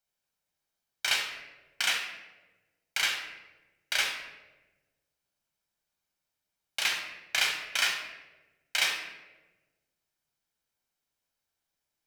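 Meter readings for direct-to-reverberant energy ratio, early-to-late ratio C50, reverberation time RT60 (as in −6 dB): 1.0 dB, 5.0 dB, 1.2 s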